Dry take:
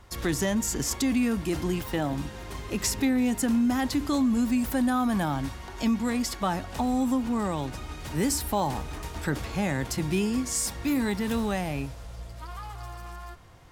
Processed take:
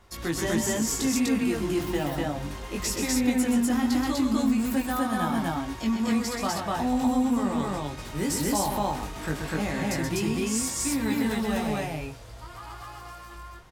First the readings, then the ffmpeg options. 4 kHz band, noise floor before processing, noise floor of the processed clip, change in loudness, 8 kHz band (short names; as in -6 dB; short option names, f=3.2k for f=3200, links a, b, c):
+1.5 dB, -41 dBFS, -43 dBFS, +0.5 dB, +1.5 dB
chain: -filter_complex "[0:a]equalizer=f=75:w=0.63:g=-4,flanger=delay=18:depth=2.8:speed=0.19,asplit=2[a][b];[b]aecho=0:1:128.3|247.8:0.501|1[c];[a][c]amix=inputs=2:normalize=0,volume=1dB"